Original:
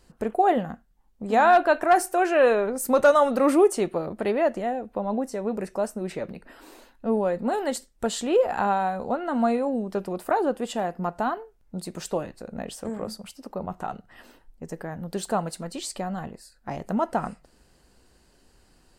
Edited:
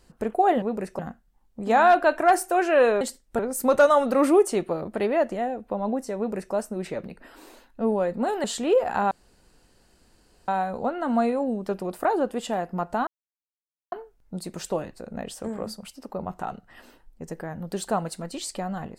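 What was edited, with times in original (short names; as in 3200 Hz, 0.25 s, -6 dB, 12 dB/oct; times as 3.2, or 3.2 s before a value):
5.42–5.79 copy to 0.62
7.69–8.07 move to 2.64
8.74 insert room tone 1.37 s
11.33 insert silence 0.85 s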